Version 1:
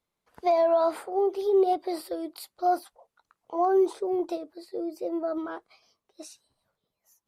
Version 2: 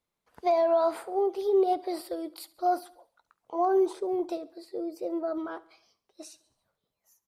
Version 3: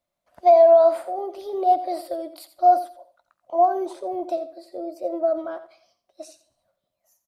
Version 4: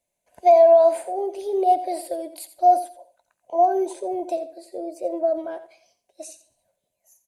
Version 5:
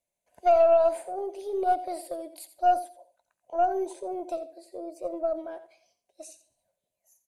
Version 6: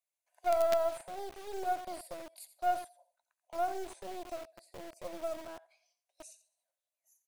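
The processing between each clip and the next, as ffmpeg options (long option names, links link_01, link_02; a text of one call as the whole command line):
ffmpeg -i in.wav -af "aecho=1:1:69|138|207|276:0.0944|0.0481|0.0246|0.0125,volume=-1.5dB" out.wav
ffmpeg -i in.wav -af "superequalizer=7b=0.501:8b=3.55,aecho=1:1:86:0.211" out.wav
ffmpeg -i in.wav -af "superequalizer=7b=1.78:10b=0.282:12b=1.58:15b=2.82:16b=3.16" out.wav
ffmpeg -i in.wav -af "aeval=exprs='0.501*(cos(1*acos(clip(val(0)/0.501,-1,1)))-cos(1*PI/2))+0.0282*(cos(4*acos(clip(val(0)/0.501,-1,1)))-cos(4*PI/2))':channel_layout=same,volume=-6.5dB" out.wav
ffmpeg -i in.wav -filter_complex "[0:a]bandreject=frequency=3100:width=23,acrossover=split=700|1800[link_01][link_02][link_03];[link_01]acrusher=bits=4:dc=4:mix=0:aa=0.000001[link_04];[link_04][link_02][link_03]amix=inputs=3:normalize=0,volume=-6dB" out.wav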